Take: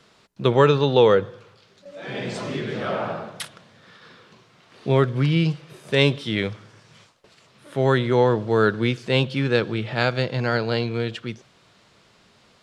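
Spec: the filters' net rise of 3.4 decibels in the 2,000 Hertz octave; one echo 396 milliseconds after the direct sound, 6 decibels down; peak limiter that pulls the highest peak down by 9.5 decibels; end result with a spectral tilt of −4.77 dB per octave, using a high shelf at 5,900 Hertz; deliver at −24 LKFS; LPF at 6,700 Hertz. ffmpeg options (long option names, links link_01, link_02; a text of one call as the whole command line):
ffmpeg -i in.wav -af "lowpass=6700,equalizer=frequency=2000:width_type=o:gain=4,highshelf=frequency=5900:gain=4,alimiter=limit=-10.5dB:level=0:latency=1,aecho=1:1:396:0.501,volume=-0.5dB" out.wav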